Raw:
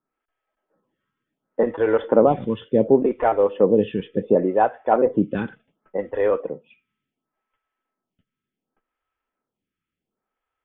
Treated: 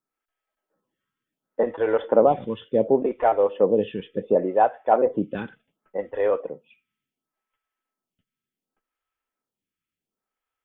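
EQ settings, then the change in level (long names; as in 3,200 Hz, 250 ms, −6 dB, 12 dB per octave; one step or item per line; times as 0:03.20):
dynamic equaliser 670 Hz, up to +7 dB, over −30 dBFS, Q 1.1
high-shelf EQ 2,500 Hz +9 dB
−7.0 dB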